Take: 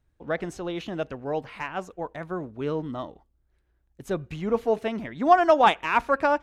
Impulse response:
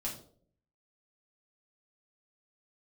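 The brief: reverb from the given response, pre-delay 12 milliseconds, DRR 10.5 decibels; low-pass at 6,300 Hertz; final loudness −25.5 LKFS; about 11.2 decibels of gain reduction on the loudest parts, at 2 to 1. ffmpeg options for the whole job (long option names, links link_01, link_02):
-filter_complex "[0:a]lowpass=6300,acompressor=threshold=-34dB:ratio=2,asplit=2[link_01][link_02];[1:a]atrim=start_sample=2205,adelay=12[link_03];[link_02][link_03]afir=irnorm=-1:irlink=0,volume=-11.5dB[link_04];[link_01][link_04]amix=inputs=2:normalize=0,volume=8.5dB"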